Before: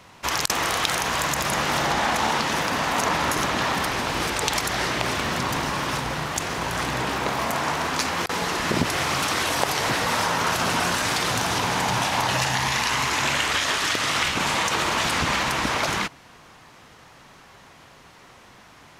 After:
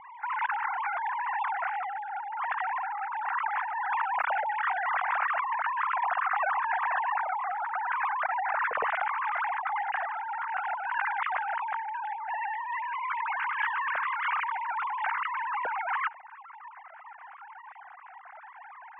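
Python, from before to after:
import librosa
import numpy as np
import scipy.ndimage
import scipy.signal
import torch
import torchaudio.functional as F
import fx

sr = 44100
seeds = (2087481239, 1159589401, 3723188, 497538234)

y = fx.sine_speech(x, sr)
y = scipy.signal.sosfilt(scipy.signal.butter(4, 1800.0, 'lowpass', fs=sr, output='sos'), y)
y = fx.peak_eq(y, sr, hz=370.0, db=-11.5, octaves=0.77)
y = fx.over_compress(y, sr, threshold_db=-31.0, ratio=-1.0)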